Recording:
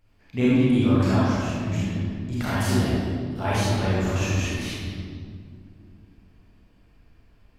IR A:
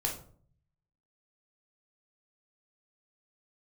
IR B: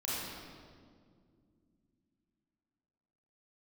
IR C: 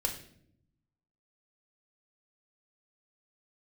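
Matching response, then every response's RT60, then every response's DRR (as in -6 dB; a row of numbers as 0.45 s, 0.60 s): B; 0.50 s, 2.2 s, 0.65 s; -1.5 dB, -8.5 dB, 1.0 dB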